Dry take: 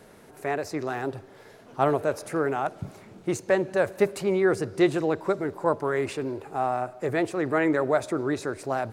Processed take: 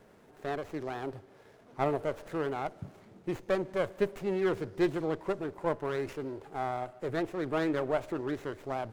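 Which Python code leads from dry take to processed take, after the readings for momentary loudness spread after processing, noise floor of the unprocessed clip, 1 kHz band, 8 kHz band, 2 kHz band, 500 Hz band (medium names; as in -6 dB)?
9 LU, -51 dBFS, -7.5 dB, under -10 dB, -9.0 dB, -7.0 dB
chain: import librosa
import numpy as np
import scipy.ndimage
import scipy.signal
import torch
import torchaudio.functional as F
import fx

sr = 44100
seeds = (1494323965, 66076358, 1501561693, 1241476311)

y = fx.running_max(x, sr, window=9)
y = F.gain(torch.from_numpy(y), -7.0).numpy()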